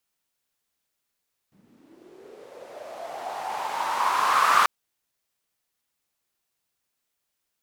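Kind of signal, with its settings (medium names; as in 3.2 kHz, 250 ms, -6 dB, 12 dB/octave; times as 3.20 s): swept filtered noise white, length 3.14 s bandpass, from 170 Hz, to 1.2 kHz, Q 5.9, linear, gain ramp +34.5 dB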